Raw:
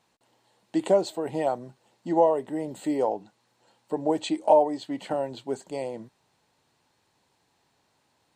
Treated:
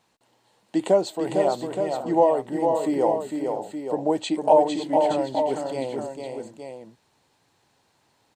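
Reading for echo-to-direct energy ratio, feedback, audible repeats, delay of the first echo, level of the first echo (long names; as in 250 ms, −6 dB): −2.5 dB, repeats not evenly spaced, 4, 454 ms, −5.0 dB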